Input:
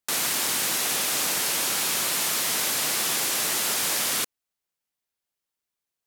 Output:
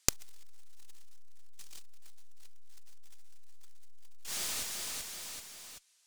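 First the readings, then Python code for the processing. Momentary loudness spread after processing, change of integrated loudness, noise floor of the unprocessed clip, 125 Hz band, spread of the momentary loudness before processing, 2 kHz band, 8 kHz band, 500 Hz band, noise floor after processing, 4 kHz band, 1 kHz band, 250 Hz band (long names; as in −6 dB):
20 LU, −14.5 dB, below −85 dBFS, −8.5 dB, 1 LU, −19.5 dB, −15.0 dB, −18.0 dB, −69 dBFS, −17.0 dB, −21.0 dB, −16.5 dB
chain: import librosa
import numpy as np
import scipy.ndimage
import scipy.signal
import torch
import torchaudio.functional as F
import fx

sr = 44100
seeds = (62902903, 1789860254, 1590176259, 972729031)

y = fx.weighting(x, sr, curve='ITU-R 468')
y = fx.cheby_harmonics(y, sr, harmonics=(2, 4, 8), levels_db=(-8, -17, -13), full_scale_db=-12.5)
y = fx.spec_erase(y, sr, start_s=1.58, length_s=0.23, low_hz=390.0, high_hz=2300.0)
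y = fx.notch_comb(y, sr, f0_hz=280.0)
y = fx.fold_sine(y, sr, drive_db=4, ceiling_db=-11.0)
y = fx.echo_feedback(y, sr, ms=383, feedback_pct=59, wet_db=-23.5)
y = fx.transformer_sat(y, sr, knee_hz=550.0)
y = F.gain(torch.from_numpy(y), 3.0).numpy()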